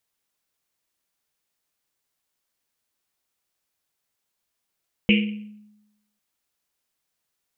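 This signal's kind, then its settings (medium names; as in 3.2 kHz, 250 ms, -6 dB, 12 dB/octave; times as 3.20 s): Risset drum, pitch 210 Hz, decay 0.98 s, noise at 2.6 kHz, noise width 780 Hz, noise 30%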